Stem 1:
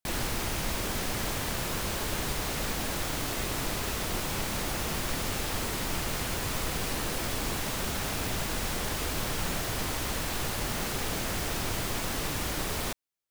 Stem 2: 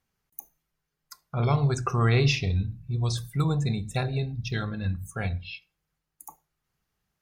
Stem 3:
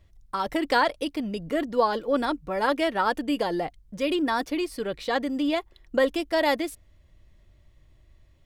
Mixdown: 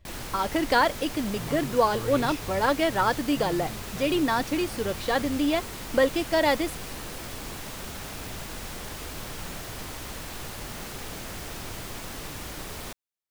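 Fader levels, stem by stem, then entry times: -5.5 dB, -14.0 dB, +0.5 dB; 0.00 s, 0.00 s, 0.00 s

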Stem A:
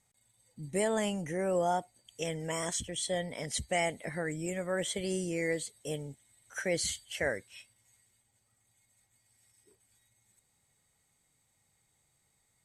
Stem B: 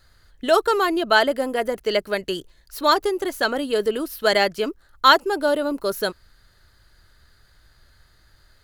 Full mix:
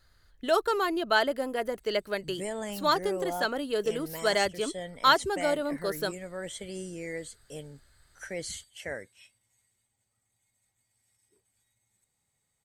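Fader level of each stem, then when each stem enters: -5.0 dB, -7.5 dB; 1.65 s, 0.00 s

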